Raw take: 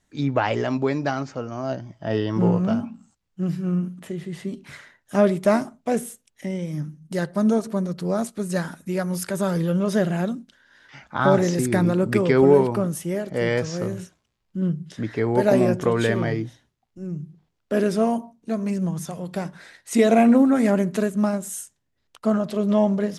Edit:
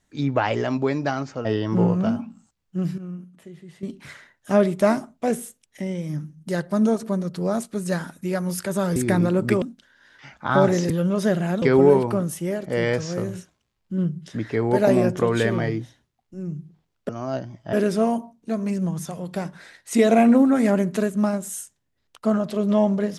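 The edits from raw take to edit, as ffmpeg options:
-filter_complex "[0:a]asplit=10[a][b][c][d][e][f][g][h][i][j];[a]atrim=end=1.452[k];[b]atrim=start=2.088:end=3.622[l];[c]atrim=start=3.618:end=4.472,asetpts=PTS-STARTPTS,volume=-11dB[m];[d]atrim=start=4.468:end=9.602[n];[e]atrim=start=11.598:end=12.262[o];[f]atrim=start=10.318:end=11.602[p];[g]atrim=start=9.598:end=10.322[q];[h]atrim=start=12.258:end=17.732[r];[i]atrim=start=1.448:end=2.092[s];[j]atrim=start=17.728[t];[k][l]acrossfade=d=0.004:c1=hsin:c2=hsin[u];[u][m]acrossfade=d=0.004:c1=hsin:c2=hsin[v];[v][n]acrossfade=d=0.004:c1=hsin:c2=hsin[w];[w][o]acrossfade=d=0.004:c1=hsin:c2=hsin[x];[x][p]acrossfade=d=0.004:c1=hsin:c2=hsin[y];[y][q]acrossfade=d=0.004:c1=hsin:c2=hsin[z];[z][r]acrossfade=d=0.004:c1=hsin:c2=hsin[aa];[aa][s]acrossfade=d=0.004:c1=hsin:c2=hsin[ab];[ab][t]acrossfade=d=0.004:c1=hsin:c2=hsin"

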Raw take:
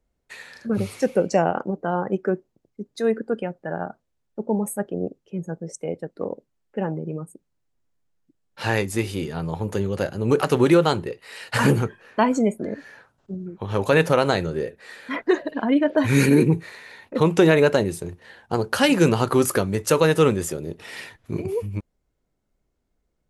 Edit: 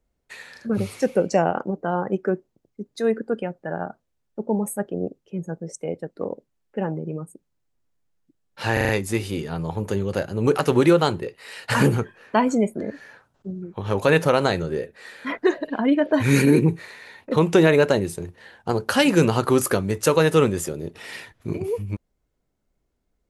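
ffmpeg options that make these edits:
-filter_complex "[0:a]asplit=5[a][b][c][d][e];[a]atrim=end=8.772[f];[b]atrim=start=8.728:end=8.772[g];[c]atrim=start=8.728:end=8.772[h];[d]atrim=start=8.728:end=8.772[i];[e]atrim=start=8.728[j];[f][g]acrossfade=d=0.004:c1=hsin:c2=hsin[k];[k][h]acrossfade=d=0.004:c1=hsin:c2=hsin[l];[l][i]acrossfade=d=0.004:c1=hsin:c2=hsin[m];[m][j]acrossfade=d=0.004:c1=hsin:c2=hsin"

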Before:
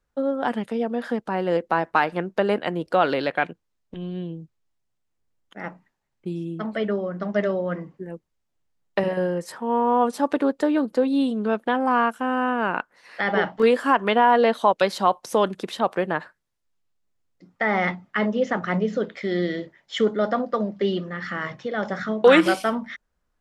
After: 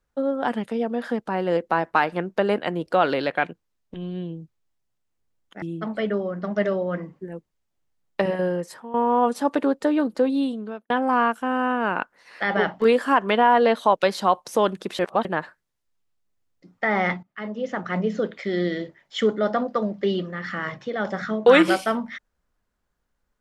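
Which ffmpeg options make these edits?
-filter_complex "[0:a]asplit=7[a][b][c][d][e][f][g];[a]atrim=end=5.622[h];[b]atrim=start=6.398:end=9.72,asetpts=PTS-STARTPTS,afade=t=out:st=2.942:d=0.38:silence=0.199526[i];[c]atrim=start=9.72:end=11.68,asetpts=PTS-STARTPTS,afade=t=in:d=0.004:c=hsin:silence=0.199526,afade=t=out:st=1.35:d=0.61[j];[d]atrim=start=11.68:end=15.772,asetpts=PTS-STARTPTS,afade=t=in:d=0.004:c=hsin[k];[e]atrim=start=15.768:end=16.032,asetpts=PTS-STARTPTS,areverse[l];[f]atrim=start=16.028:end=18.01,asetpts=PTS-STARTPTS,afade=t=out:st=1.978:d=0.004:c=hsin:silence=0.125893[m];[g]atrim=start=18.01,asetpts=PTS-STARTPTS,afade=t=in:d=0.91:silence=0.125893[n];[i][j][k]concat=n=3:v=0:a=1[o];[h][o]acrossfade=d=0.004:c1=hsin:c2=hsin[p];[p][l]acrossfade=d=0.004:c1=hsin:c2=hsin[q];[m][n]concat=n=2:v=0:a=1[r];[q][r]acrossfade=d=0.004:c1=hsin:c2=hsin"

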